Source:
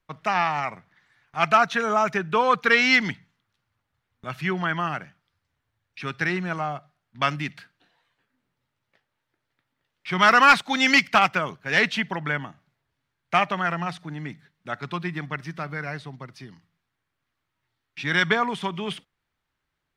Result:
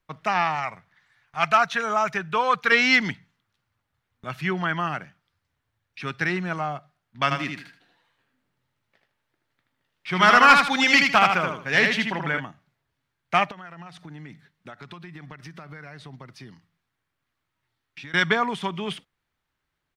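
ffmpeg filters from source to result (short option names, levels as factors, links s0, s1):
-filter_complex "[0:a]asettb=1/sr,asplit=3[s0][s1][s2];[s0]atrim=end=0.554[s3];[s1]atrim=start=0.55:end=2.72,asetpts=PTS-STARTPTS,afade=t=in:d=0.004:c=qsin,afade=t=out:st=2.166:d=0.004:c=qsin,equalizer=f=300:t=o:w=1.5:g=-7.5[s4];[s2]atrim=start=2.716[s5];[s3][s4]acrossfade=d=0.004:c1=hsin:c2=qsin[s6];[s6][s5]acrossfade=d=0.004:c1=qsin:c2=hsin,asplit=3[s7][s8][s9];[s7]afade=t=out:st=7.3:d=0.02[s10];[s8]aecho=1:1:78|156|234|312:0.596|0.161|0.0434|0.0117,afade=t=in:st=7.3:d=0.02,afade=t=out:st=12.39:d=0.02[s11];[s9]afade=t=in:st=12.39:d=0.02[s12];[s10][s11][s12]amix=inputs=3:normalize=0,asettb=1/sr,asplit=3[s13][s14][s15];[s13]atrim=end=13.514[s16];[s14]atrim=start=13.51:end=18.14,asetpts=PTS-STARTPTS,afade=t=in:d=0.004:c=qsin,afade=t=out:st=4.626:d=0.004:c=qsin,acompressor=threshold=0.0158:ratio=16:attack=3.2:release=140:knee=1:detection=peak[s17];[s15]atrim=start=18.136[s18];[s16][s17]acrossfade=d=0.004:c1=hsin:c2=qsin[s19];[s19][s18]acrossfade=d=0.004:c1=qsin:c2=hsin"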